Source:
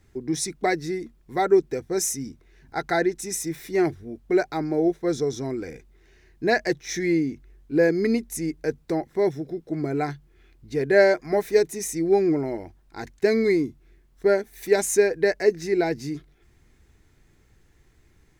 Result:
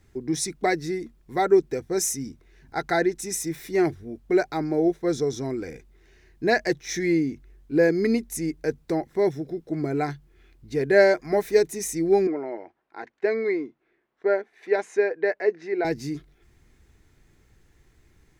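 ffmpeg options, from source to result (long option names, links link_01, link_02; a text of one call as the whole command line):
ffmpeg -i in.wav -filter_complex "[0:a]asettb=1/sr,asplit=3[link_01][link_02][link_03];[link_01]atrim=end=12.274[link_04];[link_02]atrim=start=12.27:end=15.85,asetpts=PTS-STARTPTS,afade=type=in:duration=0.004:curve=qsin,afade=type=out:start_time=3.576:duration=0.004:curve=qsin,highpass=430,lowpass=2200[link_05];[link_03]atrim=start=15.846[link_06];[link_04][link_05]acrossfade=duration=0.004:curve1=hsin:curve2=qsin[link_07];[link_07][link_06]acrossfade=duration=0.004:curve1=qsin:curve2=hsin" out.wav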